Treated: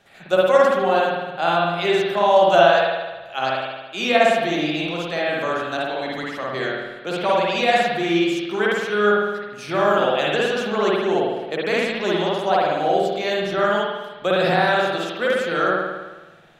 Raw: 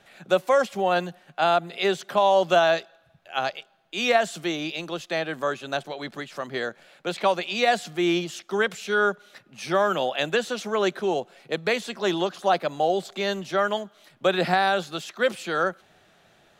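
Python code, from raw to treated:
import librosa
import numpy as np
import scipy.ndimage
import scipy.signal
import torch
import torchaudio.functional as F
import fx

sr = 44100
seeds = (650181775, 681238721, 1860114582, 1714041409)

p1 = fx.level_steps(x, sr, step_db=17)
p2 = x + F.gain(torch.from_numpy(p1), -2.0).numpy()
p3 = fx.rev_spring(p2, sr, rt60_s=1.2, pass_ms=(53,), chirp_ms=25, drr_db=-5.0)
y = F.gain(torch.from_numpy(p3), -3.0).numpy()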